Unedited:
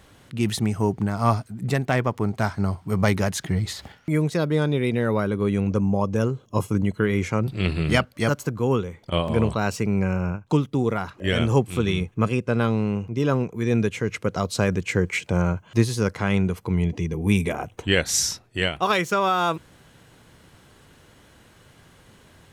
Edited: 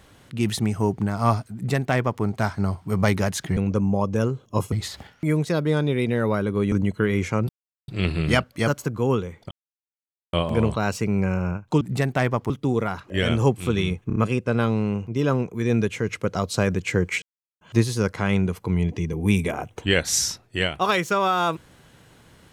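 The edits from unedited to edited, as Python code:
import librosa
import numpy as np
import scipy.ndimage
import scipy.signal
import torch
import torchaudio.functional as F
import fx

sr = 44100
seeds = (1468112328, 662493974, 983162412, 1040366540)

y = fx.edit(x, sr, fx.duplicate(start_s=1.54, length_s=0.69, to_s=10.6),
    fx.move(start_s=5.57, length_s=1.15, to_s=3.57),
    fx.insert_silence(at_s=7.49, length_s=0.39),
    fx.insert_silence(at_s=9.12, length_s=0.82),
    fx.stutter(start_s=12.17, slice_s=0.03, count=4),
    fx.silence(start_s=15.23, length_s=0.39), tone=tone)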